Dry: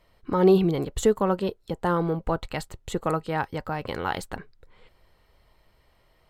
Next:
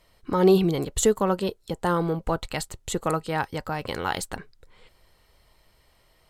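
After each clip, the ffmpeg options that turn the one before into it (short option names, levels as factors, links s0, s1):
-af "equalizer=f=8700:w=0.45:g=9.5"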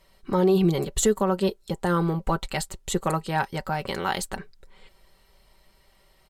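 -af "aecho=1:1:5.2:0.59,alimiter=limit=0.266:level=0:latency=1:release=124"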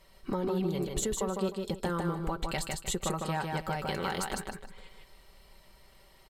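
-af "acompressor=threshold=0.0316:ratio=6,aecho=1:1:154|308|462|616:0.668|0.174|0.0452|0.0117"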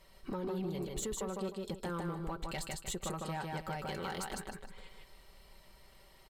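-filter_complex "[0:a]asplit=2[s0][s1];[s1]acompressor=threshold=0.00891:ratio=6,volume=0.794[s2];[s0][s2]amix=inputs=2:normalize=0,asoftclip=type=tanh:threshold=0.0668,volume=0.473"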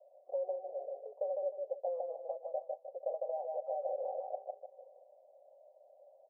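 -af "asuperpass=centerf=610:order=8:qfactor=2.7,volume=3.35"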